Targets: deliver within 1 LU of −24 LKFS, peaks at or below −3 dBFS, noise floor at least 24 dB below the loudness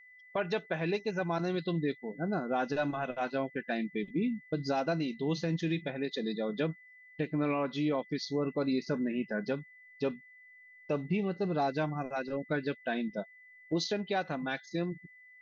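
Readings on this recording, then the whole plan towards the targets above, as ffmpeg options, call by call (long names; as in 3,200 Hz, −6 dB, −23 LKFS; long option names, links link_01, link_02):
interfering tone 2,000 Hz; level of the tone −54 dBFS; integrated loudness −34.0 LKFS; sample peak −20.0 dBFS; target loudness −24.0 LKFS
→ -af "bandreject=frequency=2000:width=30"
-af "volume=10dB"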